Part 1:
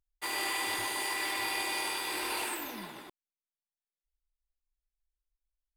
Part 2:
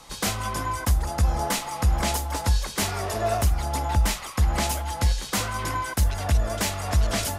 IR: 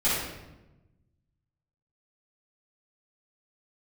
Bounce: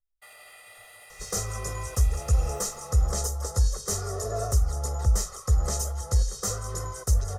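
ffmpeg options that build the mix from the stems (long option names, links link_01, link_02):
-filter_complex "[0:a]aecho=1:1:1.5:0.65,alimiter=level_in=4.5dB:limit=-24dB:level=0:latency=1,volume=-4.5dB,volume=-15dB,asplit=2[link_01][link_02];[link_02]volume=-16.5dB[link_03];[1:a]firequalizer=gain_entry='entry(100,0);entry(250,-7);entry(410,9);entry(640,-8);entry(1300,-3);entry(2500,-21);entry(6000,6);entry(12000,-4)':delay=0.05:min_phase=1,adelay=1100,volume=-4.5dB[link_04];[2:a]atrim=start_sample=2205[link_05];[link_03][link_05]afir=irnorm=-1:irlink=0[link_06];[link_01][link_04][link_06]amix=inputs=3:normalize=0,aecho=1:1:1.6:0.67"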